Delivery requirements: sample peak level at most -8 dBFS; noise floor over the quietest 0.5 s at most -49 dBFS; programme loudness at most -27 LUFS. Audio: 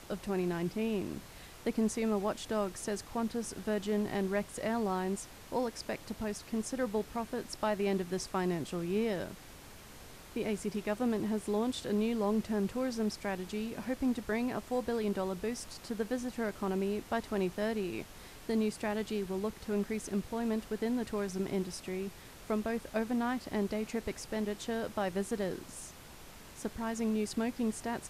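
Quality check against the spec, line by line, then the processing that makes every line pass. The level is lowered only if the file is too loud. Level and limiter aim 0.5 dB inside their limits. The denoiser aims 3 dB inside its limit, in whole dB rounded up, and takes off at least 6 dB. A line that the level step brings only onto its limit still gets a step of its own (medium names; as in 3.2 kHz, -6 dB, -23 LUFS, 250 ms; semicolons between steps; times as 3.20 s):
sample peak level -19.0 dBFS: pass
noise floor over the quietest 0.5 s -51 dBFS: pass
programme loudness -35.0 LUFS: pass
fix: none needed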